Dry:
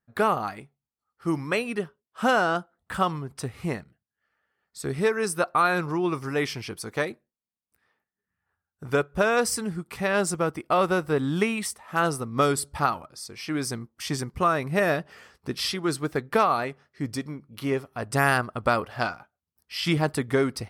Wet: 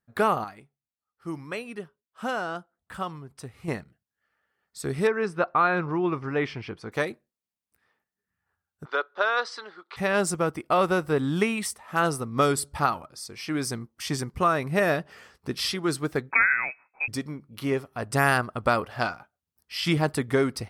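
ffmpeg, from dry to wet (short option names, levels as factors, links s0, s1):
-filter_complex "[0:a]asettb=1/sr,asplit=3[s0][s1][s2];[s0]atrim=end=5.074[s3];[s1]atrim=start=5.07:end=6.92,asetpts=PTS-STARTPTS,afade=t=in:d=0.004:c=qsin,afade=t=out:st=1.846:d=0.004:c=qsin,lowpass=2700[s4];[s2]atrim=start=6.916[s5];[s3][s4]acrossfade=d=0.004:c1=hsin:c2=qsin[s6];[s6][s5]acrossfade=d=0.004:c1=qsin:c2=hsin,asplit=3[s7][s8][s9];[s7]afade=t=out:st=8.84:d=0.02[s10];[s8]highpass=f=460:w=0.5412,highpass=f=460:w=1.3066,equalizer=f=470:t=q:w=4:g=-6,equalizer=f=700:t=q:w=4:g=-5,equalizer=f=1300:t=q:w=4:g=4,equalizer=f=2500:t=q:w=4:g=-7,equalizer=f=3900:t=q:w=4:g=7,lowpass=f=4200:w=0.5412,lowpass=f=4200:w=1.3066,afade=t=in:st=8.84:d=0.02,afade=t=out:st=9.96:d=0.02[s11];[s9]afade=t=in:st=9.96:d=0.02[s12];[s10][s11][s12]amix=inputs=3:normalize=0,asettb=1/sr,asplit=3[s13][s14][s15];[s13]atrim=end=16.314[s16];[s14]atrim=start=16.31:end=17.08,asetpts=PTS-STARTPTS,afade=t=in:d=0.004:c=qsin,afade=t=out:st=0.766:d=0.004:c=qsin,lowpass=f=2300:t=q:w=0.5098,lowpass=f=2300:t=q:w=0.6013,lowpass=f=2300:t=q:w=0.9,lowpass=f=2300:t=q:w=2.563,afreqshift=-2700[s17];[s15]atrim=start=17.076[s18];[s16][s17]acrossfade=d=0.004:c1=hsin:c2=qsin[s19];[s19][s18]acrossfade=d=0.004:c1=qsin:c2=hsin,asplit=3[s20][s21][s22];[s20]atrim=end=0.442[s23];[s21]atrim=start=0.438:end=3.682,asetpts=PTS-STARTPTS,volume=0.398[s24];[s22]atrim=start=3.678[s25];[s23][s24]acrossfade=d=0.004:c1=hsin:c2=hsin[s26];[s26][s25]acrossfade=d=0.004:c1=hsin:c2=hsin"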